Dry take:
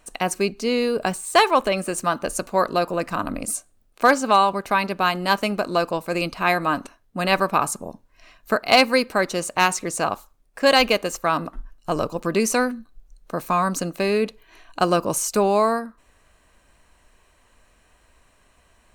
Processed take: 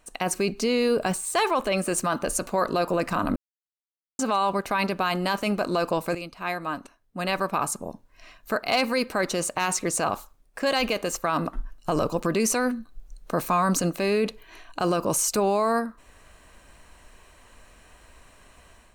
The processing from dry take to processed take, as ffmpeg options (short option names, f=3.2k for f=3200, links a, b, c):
-filter_complex "[0:a]asplit=4[a][b][c][d];[a]atrim=end=3.36,asetpts=PTS-STARTPTS,afade=t=out:st=3.356:d=0.004:c=hsin[e];[b]atrim=start=3.36:end=4.19,asetpts=PTS-STARTPTS,volume=0[f];[c]atrim=start=4.19:end=6.15,asetpts=PTS-STARTPTS,afade=t=in:d=0.004:c=hsin,afade=t=out:st=1.956:d=0.004:c=hsin:silence=0.158489[g];[d]atrim=start=6.15,asetpts=PTS-STARTPTS,afade=t=in:d=2.83:c=qua:silence=0.158489[h];[e][f][g][h]concat=n=4:v=0:a=1,dynaudnorm=f=110:g=5:m=10dB,alimiter=limit=-10.5dB:level=0:latency=1:release=14,volume=-4dB"